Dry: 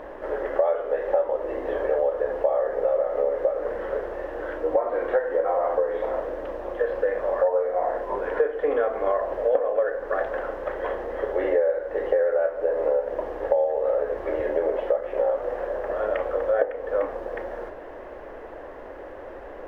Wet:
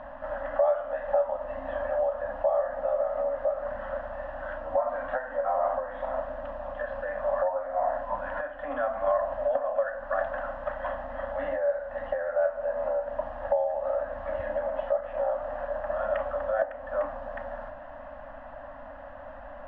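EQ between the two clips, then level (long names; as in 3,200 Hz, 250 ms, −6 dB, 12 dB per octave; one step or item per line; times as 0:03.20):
elliptic band-stop filter 270–580 Hz, stop band 40 dB
low-pass filter 2,800 Hz 12 dB per octave
parametric band 2,200 Hz −11.5 dB 0.24 octaves
0.0 dB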